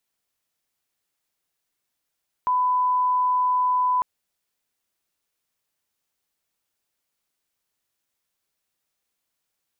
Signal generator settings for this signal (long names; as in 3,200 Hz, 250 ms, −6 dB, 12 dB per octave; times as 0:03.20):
line-up tone −18 dBFS 1.55 s